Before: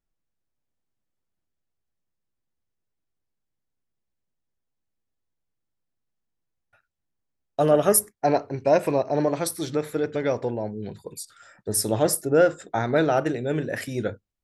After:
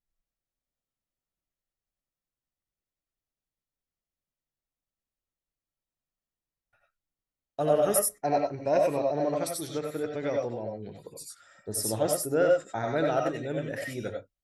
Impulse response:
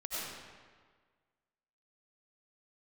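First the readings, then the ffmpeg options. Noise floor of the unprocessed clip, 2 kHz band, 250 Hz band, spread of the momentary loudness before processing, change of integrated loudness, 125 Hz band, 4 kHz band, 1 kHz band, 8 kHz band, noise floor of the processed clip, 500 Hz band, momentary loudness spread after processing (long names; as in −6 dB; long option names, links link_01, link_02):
−81 dBFS, −6.0 dB, −6.5 dB, 15 LU, −4.5 dB, −7.0 dB, −5.0 dB, −4.5 dB, −5.0 dB, below −85 dBFS, −4.0 dB, 17 LU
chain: -filter_complex "[1:a]atrim=start_sample=2205,atrim=end_sample=4410[link_01];[0:a][link_01]afir=irnorm=-1:irlink=0,volume=-2.5dB"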